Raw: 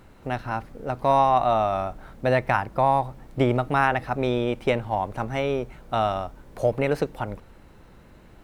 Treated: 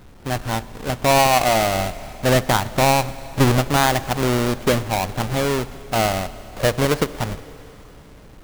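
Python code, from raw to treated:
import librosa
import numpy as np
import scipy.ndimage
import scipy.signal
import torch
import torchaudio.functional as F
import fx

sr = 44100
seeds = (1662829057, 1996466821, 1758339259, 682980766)

y = fx.halfwave_hold(x, sr)
y = fx.rev_schroeder(y, sr, rt60_s=3.8, comb_ms=31, drr_db=16.0)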